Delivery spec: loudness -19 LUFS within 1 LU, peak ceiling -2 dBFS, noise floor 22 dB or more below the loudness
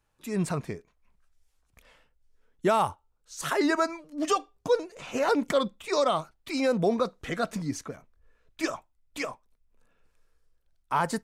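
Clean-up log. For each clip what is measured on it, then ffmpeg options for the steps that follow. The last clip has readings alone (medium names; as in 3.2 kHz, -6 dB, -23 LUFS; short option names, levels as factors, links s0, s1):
loudness -29.0 LUFS; peak level -14.0 dBFS; loudness target -19.0 LUFS
-> -af "volume=3.16"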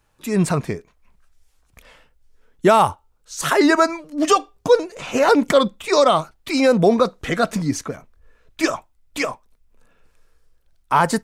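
loudness -19.0 LUFS; peak level -4.0 dBFS; noise floor -62 dBFS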